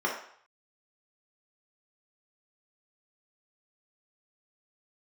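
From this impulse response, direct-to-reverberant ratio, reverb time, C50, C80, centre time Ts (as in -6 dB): -3.5 dB, 0.60 s, 4.5 dB, 8.5 dB, 32 ms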